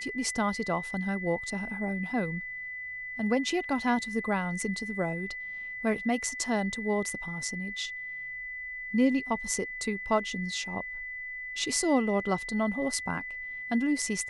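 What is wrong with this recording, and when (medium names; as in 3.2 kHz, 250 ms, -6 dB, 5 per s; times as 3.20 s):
whine 2 kHz -36 dBFS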